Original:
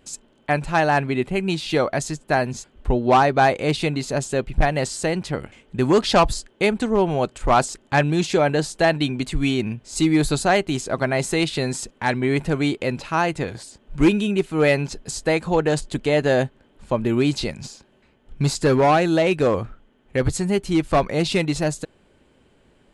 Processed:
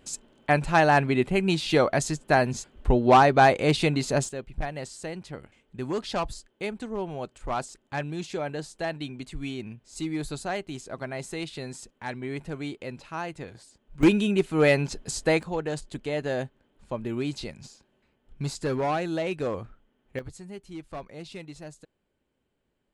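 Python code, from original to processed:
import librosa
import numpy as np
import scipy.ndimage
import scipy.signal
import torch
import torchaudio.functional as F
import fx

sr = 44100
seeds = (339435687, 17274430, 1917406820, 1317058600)

y = fx.gain(x, sr, db=fx.steps((0.0, -1.0), (4.29, -13.0), (14.03, -2.5), (15.43, -10.5), (20.19, -20.0)))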